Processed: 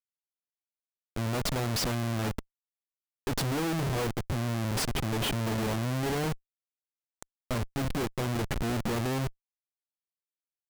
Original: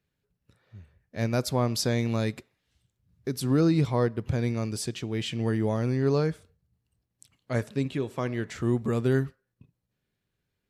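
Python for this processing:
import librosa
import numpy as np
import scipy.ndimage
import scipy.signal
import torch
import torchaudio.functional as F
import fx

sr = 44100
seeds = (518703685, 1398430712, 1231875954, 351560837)

y = fx.hum_notches(x, sr, base_hz=50, count=6, at=(3.33, 4.09))
y = fx.schmitt(y, sr, flips_db=-34.5)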